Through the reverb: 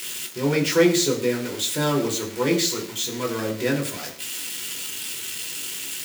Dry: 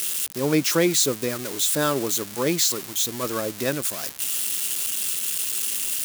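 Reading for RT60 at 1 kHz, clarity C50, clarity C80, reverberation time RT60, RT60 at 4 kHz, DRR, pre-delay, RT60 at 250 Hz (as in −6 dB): 0.50 s, 10.5 dB, 13.5 dB, 0.55 s, 0.55 s, 0.0 dB, 3 ms, 0.55 s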